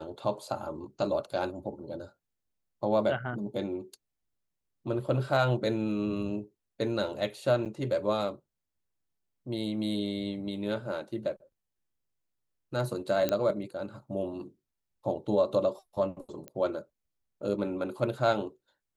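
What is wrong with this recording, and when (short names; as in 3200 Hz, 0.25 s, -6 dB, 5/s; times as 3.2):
7.65–7.66 gap 8.3 ms
13.29 pop -13 dBFS
16.48 pop -25 dBFS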